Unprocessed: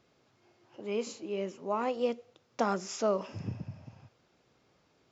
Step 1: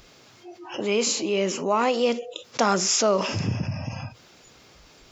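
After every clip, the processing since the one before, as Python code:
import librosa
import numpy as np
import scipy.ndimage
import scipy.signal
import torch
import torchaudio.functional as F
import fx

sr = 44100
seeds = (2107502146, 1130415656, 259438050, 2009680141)

y = fx.noise_reduce_blind(x, sr, reduce_db=27)
y = fx.high_shelf(y, sr, hz=2000.0, db=10.5)
y = fx.env_flatten(y, sr, amount_pct=50)
y = F.gain(torch.from_numpy(y), 5.5).numpy()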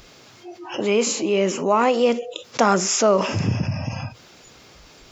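y = fx.dynamic_eq(x, sr, hz=4400.0, q=1.1, threshold_db=-40.0, ratio=4.0, max_db=-7)
y = F.gain(torch.from_numpy(y), 4.5).numpy()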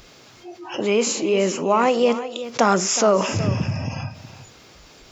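y = x + 10.0 ** (-13.5 / 20.0) * np.pad(x, (int(368 * sr / 1000.0), 0))[:len(x)]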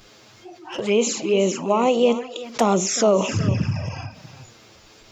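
y = fx.env_flanger(x, sr, rest_ms=10.7, full_db=-16.0)
y = F.gain(torch.from_numpy(y), 1.5).numpy()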